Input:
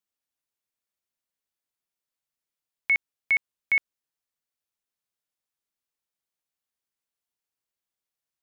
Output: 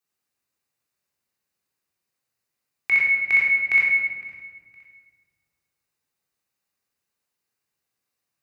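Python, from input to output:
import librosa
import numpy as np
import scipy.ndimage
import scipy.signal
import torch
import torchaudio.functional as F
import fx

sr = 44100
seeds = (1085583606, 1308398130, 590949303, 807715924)

p1 = scipy.signal.sosfilt(scipy.signal.butter(2, 61.0, 'highpass', fs=sr, output='sos'), x)
p2 = fx.notch(p1, sr, hz=3300.0, q=7.2)
p3 = p2 + fx.echo_feedback(p2, sr, ms=512, feedback_pct=35, wet_db=-23.0, dry=0)
p4 = fx.room_shoebox(p3, sr, seeds[0], volume_m3=1300.0, walls='mixed', distance_m=3.7)
y = p4 * librosa.db_to_amplitude(1.5)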